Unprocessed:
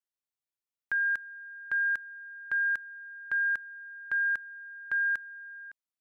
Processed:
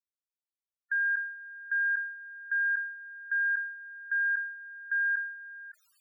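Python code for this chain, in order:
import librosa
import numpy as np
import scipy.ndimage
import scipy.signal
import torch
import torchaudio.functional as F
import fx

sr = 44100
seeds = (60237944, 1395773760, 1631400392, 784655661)

y = fx.low_shelf(x, sr, hz=230.0, db=-9.0)
y = fx.spec_topn(y, sr, count=16)
y = fx.sustainer(y, sr, db_per_s=78.0)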